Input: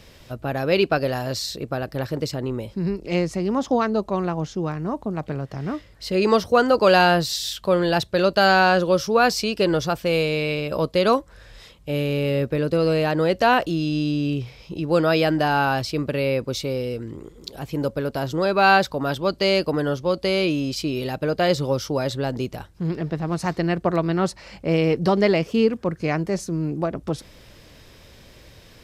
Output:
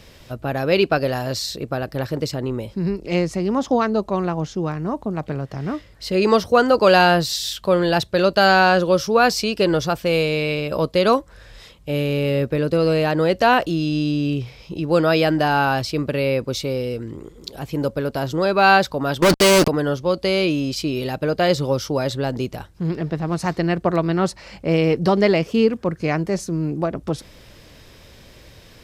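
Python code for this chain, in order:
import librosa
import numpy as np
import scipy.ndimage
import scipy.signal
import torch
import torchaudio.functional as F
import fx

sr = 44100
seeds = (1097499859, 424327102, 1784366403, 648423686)

y = fx.fuzz(x, sr, gain_db=36.0, gate_db=-41.0, at=(19.22, 19.68))
y = y * 10.0 ** (2.0 / 20.0)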